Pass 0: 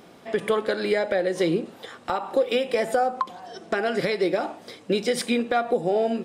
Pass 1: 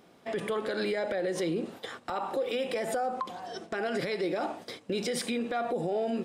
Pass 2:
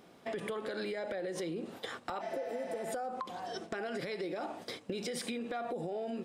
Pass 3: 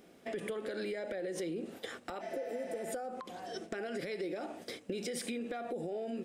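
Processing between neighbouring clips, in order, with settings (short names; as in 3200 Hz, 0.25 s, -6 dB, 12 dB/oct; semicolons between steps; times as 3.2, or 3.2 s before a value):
gate -43 dBFS, range -9 dB; limiter -23 dBFS, peak gain reduction 11 dB
spectral repair 2.23–2.83, 600–6300 Hz after; compressor, threshold -35 dBFS, peak gain reduction 9.5 dB
graphic EQ 125/1000/4000 Hz -7/-10/-5 dB; gain +2 dB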